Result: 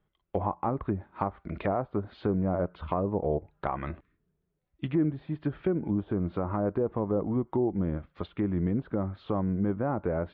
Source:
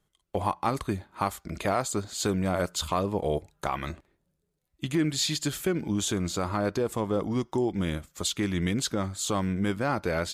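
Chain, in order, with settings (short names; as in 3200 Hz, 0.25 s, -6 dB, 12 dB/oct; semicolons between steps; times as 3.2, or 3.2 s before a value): treble ducked by the level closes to 890 Hz, closed at -24.5 dBFS; Bessel low-pass 2100 Hz, order 8; spectral repair 4.04–4.47, 340–1000 Hz after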